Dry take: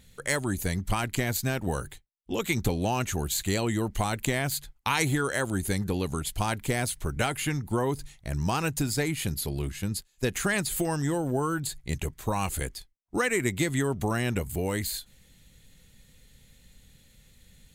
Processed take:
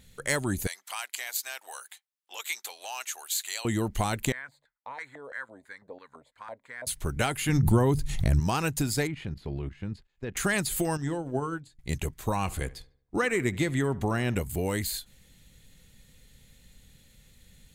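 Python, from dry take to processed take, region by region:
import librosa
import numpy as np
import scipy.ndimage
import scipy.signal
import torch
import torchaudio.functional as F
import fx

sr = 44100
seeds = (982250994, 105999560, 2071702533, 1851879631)

y = fx.chain(x, sr, fx.highpass(hz=820.0, slope=24),
    fx.dynamic_eq(hz=1100.0, q=0.71, threshold_db=-45.0, ratio=4.0, max_db=-7), at=(0.67, 3.65))
y = fx.chain(y, sr, fx.ripple_eq(per_octave=1.0, db=9),
    fx.filter_lfo_bandpass(shape='square', hz=3.0, low_hz=640.0, high_hz=1500.0, q=6.5), at=(4.32, 6.87))
y = fx.chain(y, sr, fx.low_shelf(hz=220.0, db=11.5),
    fx.hum_notches(base_hz=50, count=3),
    fx.pre_swell(db_per_s=48.0), at=(7.49, 8.4))
y = fx.chain(y, sr, fx.lowpass(hz=2300.0, slope=12),
    fx.level_steps(step_db=11), at=(9.07, 10.37))
y = fx.chain(y, sr, fx.air_absorb(metres=69.0),
    fx.hum_notches(base_hz=60, count=9),
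    fx.upward_expand(threshold_db=-39.0, expansion=2.5), at=(10.97, 11.79))
y = fx.chain(y, sr, fx.high_shelf(hz=5800.0, db=-10.0),
    fx.echo_filtered(ms=73, feedback_pct=46, hz=2700.0, wet_db=-19.5), at=(12.36, 14.35))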